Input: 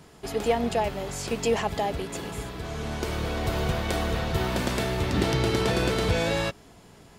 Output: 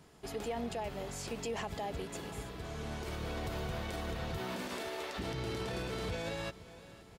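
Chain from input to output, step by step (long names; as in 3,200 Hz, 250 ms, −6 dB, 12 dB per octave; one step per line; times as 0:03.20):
0:04.38–0:05.18: high-pass filter 120 Hz → 490 Hz 24 dB per octave
repeating echo 513 ms, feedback 58%, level −22 dB
brickwall limiter −21 dBFS, peak gain reduction 11 dB
level −8.5 dB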